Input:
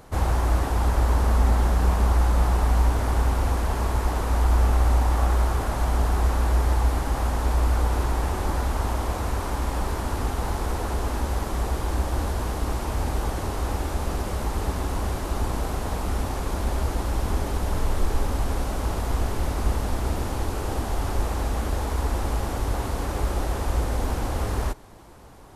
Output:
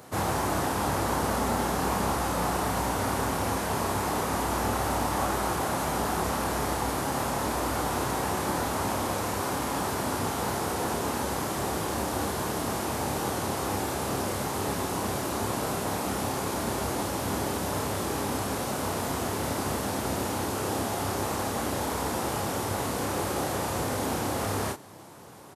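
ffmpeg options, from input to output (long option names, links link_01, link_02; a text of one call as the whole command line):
ffmpeg -i in.wav -filter_complex "[0:a]highpass=frequency=110:width=0.5412,highpass=frequency=110:width=1.3066,highshelf=frequency=5600:gain=5.5,asplit=2[link_01][link_02];[link_02]adelay=30,volume=-4.5dB[link_03];[link_01][link_03]amix=inputs=2:normalize=0" out.wav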